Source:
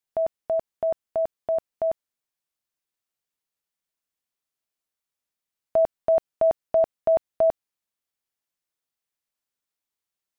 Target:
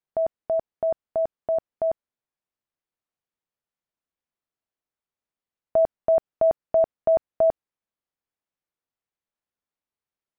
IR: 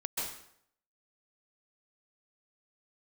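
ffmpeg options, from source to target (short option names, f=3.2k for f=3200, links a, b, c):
-af "lowpass=f=1.3k:p=1,volume=1.5dB"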